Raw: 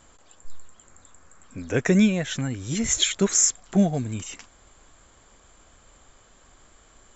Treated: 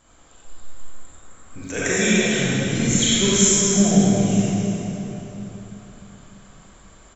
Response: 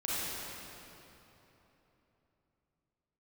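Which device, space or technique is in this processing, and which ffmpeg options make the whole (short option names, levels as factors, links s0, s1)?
cave: -filter_complex "[0:a]asettb=1/sr,asplit=3[s0][s1][s2];[s0]atrim=end=1.624[s3];[s1]atrim=start=1.62:end=2.23,asetpts=PTS-STARTPTS,afade=t=in:d=0.004:c=qsin,afade=t=out:st=0.606:d=0.004:c=qsin,aemphasis=mode=production:type=riaa[s4];[s2]atrim=start=2.226[s5];[s3][s4]acrossfade=d=0.004:c1=hsin:c2=qsin[s6];[s6][s5]acrossfade=d=0.004:c1=qsin:c2=hsin,aecho=1:1:298:0.299,aecho=1:1:933:0.0841[s7];[1:a]atrim=start_sample=2205[s8];[s7][s8]afir=irnorm=-1:irlink=0,volume=0.891"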